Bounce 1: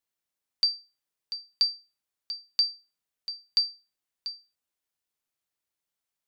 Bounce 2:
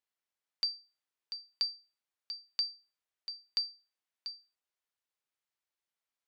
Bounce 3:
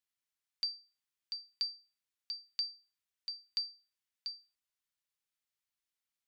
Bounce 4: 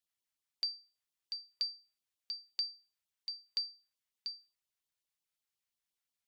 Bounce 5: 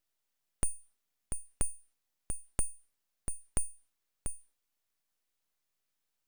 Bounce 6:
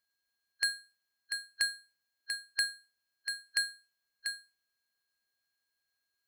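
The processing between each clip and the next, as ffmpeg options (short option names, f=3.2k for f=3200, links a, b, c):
-filter_complex "[0:a]lowpass=f=3.4k:p=1,lowshelf=f=400:g=-10.5,asplit=2[a][b];[b]acompressor=threshold=-38dB:ratio=6,volume=-2dB[c];[a][c]amix=inputs=2:normalize=0,volume=-5.5dB"
-af "equalizer=f=570:w=0.54:g=-10.5,alimiter=limit=-23.5dB:level=0:latency=1:release=387,volume=1dB"
-af "afftfilt=real='re*(1-between(b*sr/1024,220*pow(2000/220,0.5+0.5*sin(2*PI*5.6*pts/sr))/1.41,220*pow(2000/220,0.5+0.5*sin(2*PI*5.6*pts/sr))*1.41))':imag='im*(1-between(b*sr/1024,220*pow(2000/220,0.5+0.5*sin(2*PI*5.6*pts/sr))/1.41,220*pow(2000/220,0.5+0.5*sin(2*PI*5.6*pts/sr))*1.41))':win_size=1024:overlap=0.75"
-af "aeval=exprs='abs(val(0))':c=same,volume=7dB"
-af "afftfilt=real='real(if(lt(b,272),68*(eq(floor(b/68),0)*1+eq(floor(b/68),1)*3+eq(floor(b/68),2)*0+eq(floor(b/68),3)*2)+mod(b,68),b),0)':imag='imag(if(lt(b,272),68*(eq(floor(b/68),0)*1+eq(floor(b/68),1)*3+eq(floor(b/68),2)*0+eq(floor(b/68),3)*2)+mod(b,68),b),0)':win_size=2048:overlap=0.75,aeval=exprs='val(0)*sin(2*PI*1300*n/s)':c=same,bandreject=f=60:t=h:w=6,bandreject=f=120:t=h:w=6,bandreject=f=180:t=h:w=6,bandreject=f=240:t=h:w=6,bandreject=f=300:t=h:w=6,bandreject=f=360:t=h:w=6,bandreject=f=420:t=h:w=6,bandreject=f=480:t=h:w=6,bandreject=f=540:t=h:w=6"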